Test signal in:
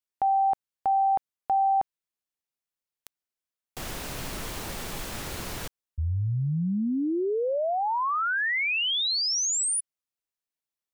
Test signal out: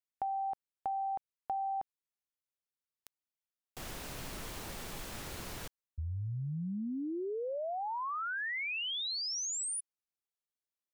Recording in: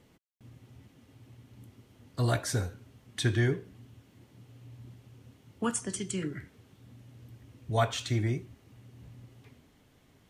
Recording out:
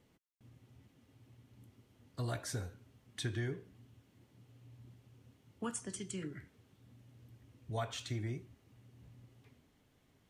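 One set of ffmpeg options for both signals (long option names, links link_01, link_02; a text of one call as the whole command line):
ffmpeg -i in.wav -af "acompressor=threshold=-26dB:ratio=6:attack=30:release=247:knee=6:detection=peak,volume=-8dB" out.wav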